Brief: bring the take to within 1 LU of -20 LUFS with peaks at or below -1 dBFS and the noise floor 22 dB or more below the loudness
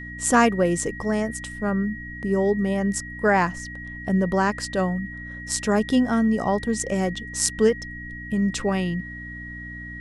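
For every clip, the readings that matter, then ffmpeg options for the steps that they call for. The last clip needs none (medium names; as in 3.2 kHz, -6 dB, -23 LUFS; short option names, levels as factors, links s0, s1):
hum 60 Hz; highest harmonic 300 Hz; hum level -36 dBFS; steady tone 1.9 kHz; tone level -36 dBFS; loudness -23.5 LUFS; peak level -1.5 dBFS; loudness target -20.0 LUFS
-> -af "bandreject=f=60:t=h:w=4,bandreject=f=120:t=h:w=4,bandreject=f=180:t=h:w=4,bandreject=f=240:t=h:w=4,bandreject=f=300:t=h:w=4"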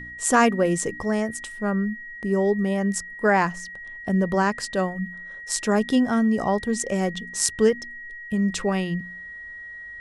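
hum not found; steady tone 1.9 kHz; tone level -36 dBFS
-> -af "bandreject=f=1900:w=30"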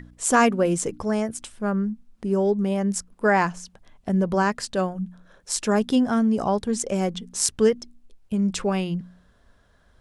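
steady tone not found; loudness -24.0 LUFS; peak level -2.0 dBFS; loudness target -20.0 LUFS
-> -af "volume=1.58,alimiter=limit=0.891:level=0:latency=1"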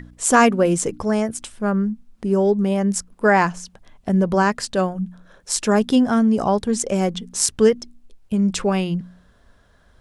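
loudness -20.0 LUFS; peak level -1.0 dBFS; noise floor -56 dBFS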